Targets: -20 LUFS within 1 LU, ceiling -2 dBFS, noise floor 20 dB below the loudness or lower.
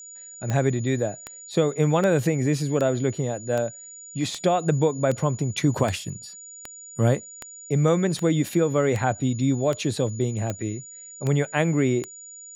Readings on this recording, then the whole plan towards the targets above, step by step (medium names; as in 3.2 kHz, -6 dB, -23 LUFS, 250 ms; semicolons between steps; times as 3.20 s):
clicks found 16; steady tone 6.9 kHz; tone level -40 dBFS; loudness -24.0 LUFS; peak level -6.5 dBFS; loudness target -20.0 LUFS
-> de-click; band-stop 6.9 kHz, Q 30; trim +4 dB